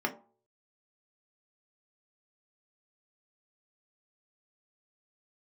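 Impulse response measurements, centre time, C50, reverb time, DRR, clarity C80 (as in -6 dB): 9 ms, 14.5 dB, 0.45 s, 1.5 dB, 18.5 dB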